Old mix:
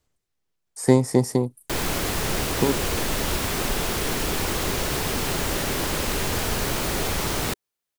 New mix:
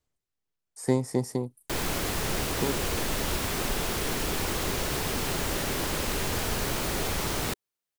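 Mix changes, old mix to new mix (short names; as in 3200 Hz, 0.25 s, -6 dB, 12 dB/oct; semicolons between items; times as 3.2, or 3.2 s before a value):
speech -8.0 dB; background -4.0 dB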